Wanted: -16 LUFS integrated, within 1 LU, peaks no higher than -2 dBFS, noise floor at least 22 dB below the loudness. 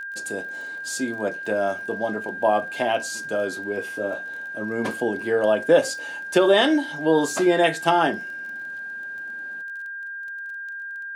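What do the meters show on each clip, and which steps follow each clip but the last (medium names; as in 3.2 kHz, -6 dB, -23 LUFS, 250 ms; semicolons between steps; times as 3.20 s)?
tick rate 23 per s; steady tone 1.6 kHz; tone level -31 dBFS; loudness -24.0 LUFS; peak level -5.5 dBFS; loudness target -16.0 LUFS
-> de-click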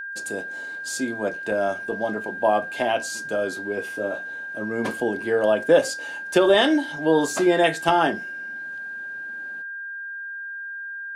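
tick rate 0 per s; steady tone 1.6 kHz; tone level -31 dBFS
-> band-stop 1.6 kHz, Q 30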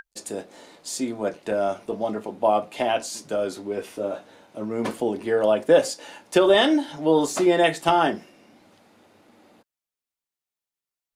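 steady tone not found; loudness -23.0 LUFS; peak level -5.5 dBFS; loudness target -16.0 LUFS
-> trim +7 dB; peak limiter -2 dBFS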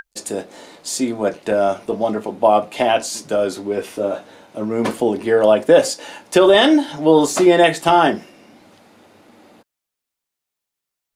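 loudness -16.5 LUFS; peak level -2.0 dBFS; noise floor -83 dBFS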